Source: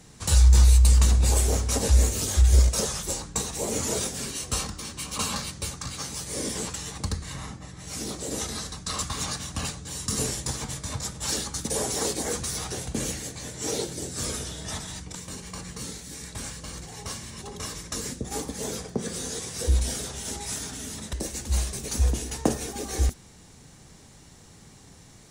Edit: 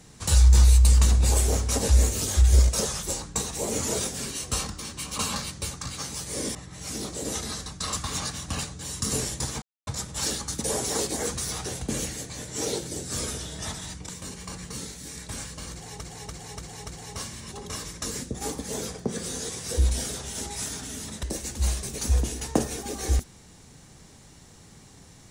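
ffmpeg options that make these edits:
-filter_complex "[0:a]asplit=8[s0][s1][s2][s3][s4][s5][s6][s7];[s0]atrim=end=6.552[s8];[s1]atrim=start=7.608:end=10.68,asetpts=PTS-STARTPTS,afade=t=out:st=3.068:d=0.004:c=hsin[s9];[s2]atrim=start=10.68:end=10.93,asetpts=PTS-STARTPTS,volume=0[s10];[s3]atrim=start=10.93:end=17.072,asetpts=PTS-STARTPTS,afade=t=in:d=0.004:c=hsin[s11];[s4]atrim=start=16.778:end=17.072[s12];[s5]atrim=start=16.778:end=17.072[s13];[s6]atrim=start=16.778:end=17.072[s14];[s7]atrim=start=16.778[s15];[s9][s10][s11]concat=n=3:v=0:a=1[s16];[s8][s16]acrossfade=d=0.004:c1=hsin:c2=hsin[s17];[s17][s12]acrossfade=d=0.004:c1=hsin:c2=hsin[s18];[s18][s13]acrossfade=d=0.004:c1=hsin:c2=hsin[s19];[s19][s14]acrossfade=d=0.004:c1=hsin:c2=hsin[s20];[s20][s15]acrossfade=d=0.004:c1=hsin:c2=hsin"

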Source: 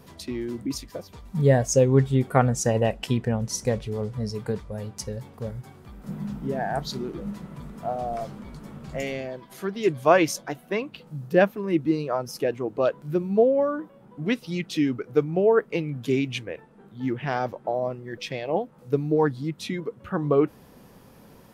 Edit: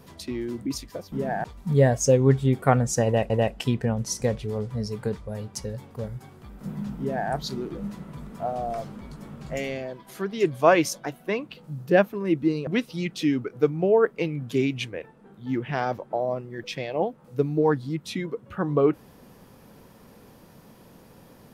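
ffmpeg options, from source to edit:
-filter_complex "[0:a]asplit=5[s0][s1][s2][s3][s4];[s0]atrim=end=1.122[s5];[s1]atrim=start=6.418:end=6.742[s6];[s2]atrim=start=1.118:end=2.982[s7];[s3]atrim=start=2.728:end=12.102[s8];[s4]atrim=start=14.208[s9];[s5][s6]acrossfade=d=0.004:c1=hsin:c2=hsin[s10];[s10][s7]acrossfade=d=0.004:c1=hsin:c2=hsin[s11];[s11][s8]acrossfade=d=0.004:c1=hsin:c2=hsin[s12];[s12][s9]acrossfade=d=0.004:c1=hsin:c2=hsin"

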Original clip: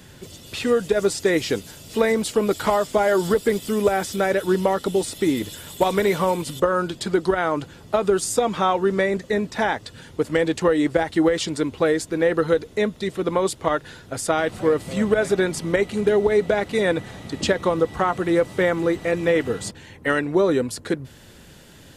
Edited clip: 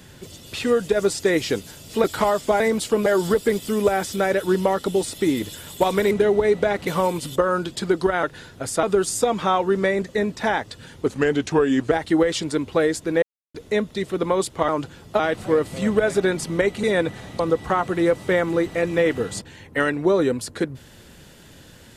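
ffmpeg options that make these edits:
-filter_complex "[0:a]asplit=16[s0][s1][s2][s3][s4][s5][s6][s7][s8][s9][s10][s11][s12][s13][s14][s15];[s0]atrim=end=2.042[s16];[s1]atrim=start=2.498:end=3.062[s17];[s2]atrim=start=2.038:end=2.502[s18];[s3]atrim=start=3.058:end=6.112[s19];[s4]atrim=start=15.978:end=16.742[s20];[s5]atrim=start=6.108:end=7.472[s21];[s6]atrim=start=13.738:end=14.342[s22];[s7]atrim=start=7.978:end=10.214[s23];[s8]atrim=start=10.21:end=10.97,asetpts=PTS-STARTPTS,asetrate=39249,aresample=44100,atrim=end_sample=37658,asetpts=PTS-STARTPTS[s24];[s9]atrim=start=10.966:end=12.28,asetpts=PTS-STARTPTS,afade=t=out:st=1.31:d=0.004:c=hsin[s25];[s10]atrim=start=12.28:end=12.6,asetpts=PTS-STARTPTS,volume=0[s26];[s11]atrim=start=12.6:end=13.742,asetpts=PTS-STARTPTS,afade=t=in:d=0.004:c=hsin[s27];[s12]atrim=start=7.468:end=7.982[s28];[s13]atrim=start=14.338:end=15.982[s29];[s14]atrim=start=16.738:end=17.302[s30];[s15]atrim=start=17.688[s31];[s16][s17]acrossfade=d=0.004:c1=hsin:c2=hsin[s32];[s32][s18]acrossfade=d=0.004:c1=hsin:c2=hsin[s33];[s33][s19]acrossfade=d=0.004:c1=hsin:c2=hsin[s34];[s34][s20]acrossfade=d=0.004:c1=hsin:c2=hsin[s35];[s35][s21]acrossfade=d=0.004:c1=hsin:c2=hsin[s36];[s36][s22]acrossfade=d=0.004:c1=hsin:c2=hsin[s37];[s37][s23]acrossfade=d=0.004:c1=hsin:c2=hsin[s38];[s38][s24]acrossfade=d=0.004:c1=hsin:c2=hsin[s39];[s25][s26][s27]concat=n=3:v=0:a=1[s40];[s39][s40]acrossfade=d=0.004:c1=hsin:c2=hsin[s41];[s41][s28]acrossfade=d=0.004:c1=hsin:c2=hsin[s42];[s42][s29]acrossfade=d=0.004:c1=hsin:c2=hsin[s43];[s43][s30]acrossfade=d=0.004:c1=hsin:c2=hsin[s44];[s44][s31]acrossfade=d=0.004:c1=hsin:c2=hsin"

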